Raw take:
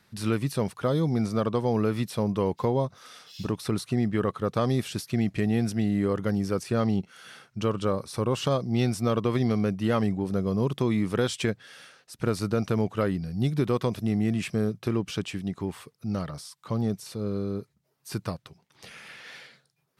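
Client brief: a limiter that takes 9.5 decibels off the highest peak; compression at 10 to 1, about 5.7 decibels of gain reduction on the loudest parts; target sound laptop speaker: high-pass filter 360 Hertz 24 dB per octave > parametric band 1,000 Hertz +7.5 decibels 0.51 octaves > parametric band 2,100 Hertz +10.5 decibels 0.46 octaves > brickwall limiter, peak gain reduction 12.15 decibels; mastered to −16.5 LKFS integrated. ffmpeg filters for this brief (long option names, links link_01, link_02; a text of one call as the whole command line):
ffmpeg -i in.wav -af "acompressor=threshold=-26dB:ratio=10,alimiter=level_in=3dB:limit=-24dB:level=0:latency=1,volume=-3dB,highpass=frequency=360:width=0.5412,highpass=frequency=360:width=1.3066,equalizer=frequency=1000:width_type=o:width=0.51:gain=7.5,equalizer=frequency=2100:width_type=o:width=0.46:gain=10.5,volume=27.5dB,alimiter=limit=-6.5dB:level=0:latency=1" out.wav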